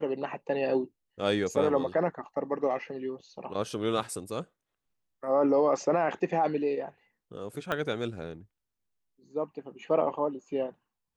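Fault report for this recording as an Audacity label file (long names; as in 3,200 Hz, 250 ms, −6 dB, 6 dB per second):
7.720000	7.720000	click −17 dBFS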